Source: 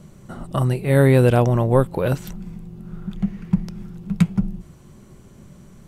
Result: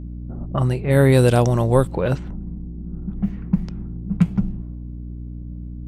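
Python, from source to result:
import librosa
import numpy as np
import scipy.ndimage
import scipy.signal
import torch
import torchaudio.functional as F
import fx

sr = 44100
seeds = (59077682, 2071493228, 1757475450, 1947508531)

y = fx.band_shelf(x, sr, hz=6000.0, db=8.0, octaves=1.7, at=(1.12, 1.88))
y = fx.resample_bad(y, sr, factor=2, down='filtered', up='zero_stuff', at=(3.13, 3.67))
y = fx.env_lowpass(y, sr, base_hz=310.0, full_db=-13.5)
y = fx.add_hum(y, sr, base_hz=60, snr_db=11)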